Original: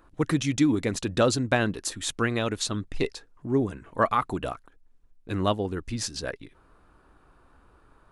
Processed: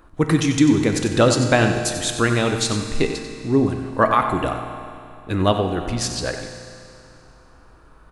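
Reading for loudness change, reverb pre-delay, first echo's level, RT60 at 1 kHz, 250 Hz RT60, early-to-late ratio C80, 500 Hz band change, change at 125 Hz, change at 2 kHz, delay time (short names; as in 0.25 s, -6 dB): +7.5 dB, 6 ms, -10.5 dB, 2.6 s, 2.6 s, 5.5 dB, +7.5 dB, +8.5 dB, +7.5 dB, 93 ms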